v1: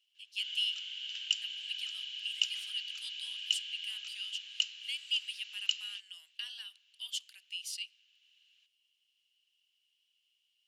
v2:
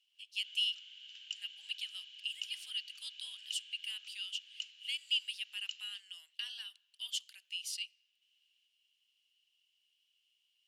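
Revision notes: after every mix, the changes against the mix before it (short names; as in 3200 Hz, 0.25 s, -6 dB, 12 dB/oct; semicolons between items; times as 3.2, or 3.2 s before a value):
background -11.5 dB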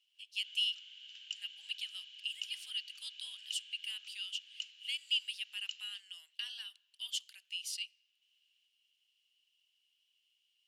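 none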